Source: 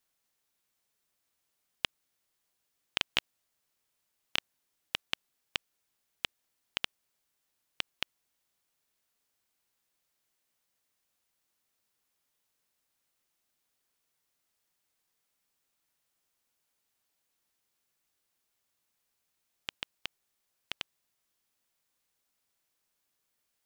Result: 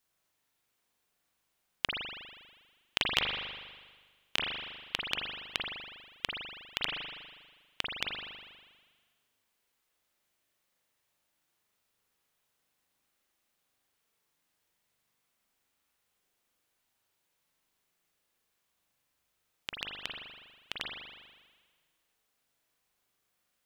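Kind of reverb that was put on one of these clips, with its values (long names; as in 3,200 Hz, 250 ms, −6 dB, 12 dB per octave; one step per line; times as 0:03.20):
spring reverb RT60 1.5 s, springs 40 ms, chirp 25 ms, DRR −2 dB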